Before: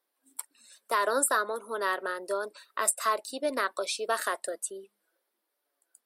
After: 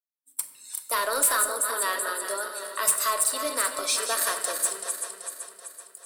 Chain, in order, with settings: regenerating reverse delay 0.191 s, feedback 71%, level -8.5 dB; expander -56 dBFS; RIAA curve recording; soft clip -16.5 dBFS, distortion -6 dB; shoebox room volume 640 m³, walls mixed, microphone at 0.61 m

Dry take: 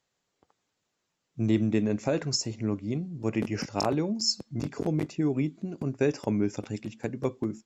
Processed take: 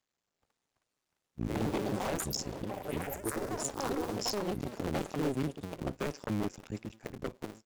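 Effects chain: cycle switcher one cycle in 2, muted; 3.06–4.21 fixed phaser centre 630 Hz, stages 6; echoes that change speed 0.442 s, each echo +5 st, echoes 3; wavefolder -20 dBFS; gain -4.5 dB

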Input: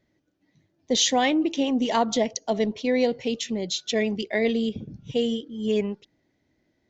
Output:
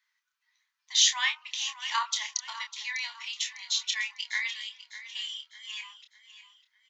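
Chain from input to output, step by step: steep high-pass 970 Hz 72 dB/oct; doubler 28 ms -6.5 dB; feedback echo 0.601 s, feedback 38%, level -14 dB

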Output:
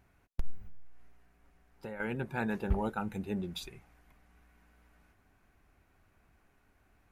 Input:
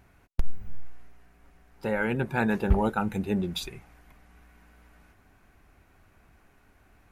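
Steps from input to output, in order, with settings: 0.66–2 compressor 5:1, threshold -32 dBFS, peak gain reduction 8.5 dB; gain -8 dB

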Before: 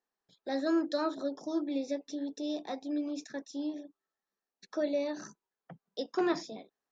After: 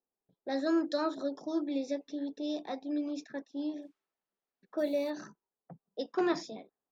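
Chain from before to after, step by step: 3.81–5.09 added noise violet -60 dBFS; low-pass opened by the level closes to 670 Hz, open at -30 dBFS

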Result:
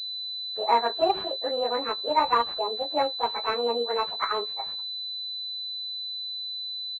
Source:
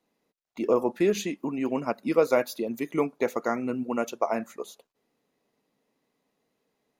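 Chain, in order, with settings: pitch shift by moving bins +11 st; doubler 17 ms -10.5 dB; pulse-width modulation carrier 4000 Hz; gain +3.5 dB

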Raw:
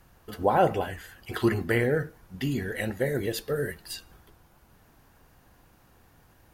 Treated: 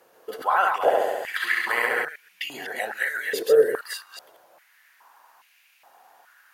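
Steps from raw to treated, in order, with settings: reverse delay 0.127 s, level -3 dB; 0.75–2.05 flutter echo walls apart 11.8 m, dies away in 1.3 s; stepped high-pass 2.4 Hz 470–2400 Hz; gain +1 dB

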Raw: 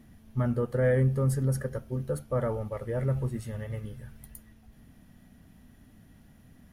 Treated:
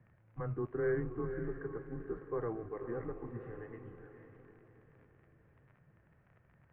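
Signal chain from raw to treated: crackle 32/s -37 dBFS; mistuned SSB -110 Hz 200–2300 Hz; diffused feedback echo 0.504 s, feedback 42%, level -8.5 dB; gain -7 dB

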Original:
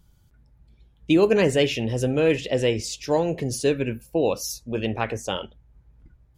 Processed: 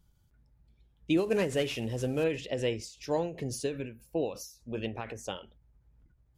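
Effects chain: 1.17–2.24 CVSD 64 kbps; ending taper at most 130 dB/s; gain -8 dB

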